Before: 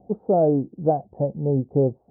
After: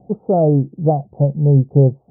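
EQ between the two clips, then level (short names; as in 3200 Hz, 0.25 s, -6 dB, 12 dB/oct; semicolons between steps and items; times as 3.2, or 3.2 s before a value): brick-wall FIR low-pass 1400 Hz; bell 140 Hz +10.5 dB 0.53 oct; +3.0 dB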